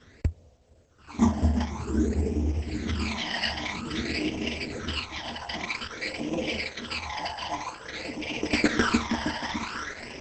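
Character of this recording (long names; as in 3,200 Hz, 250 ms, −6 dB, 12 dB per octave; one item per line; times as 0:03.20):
aliases and images of a low sample rate 7,100 Hz, jitter 0%
phaser sweep stages 12, 0.51 Hz, lowest notch 400–1,400 Hz
a quantiser's noise floor 12 bits, dither none
Opus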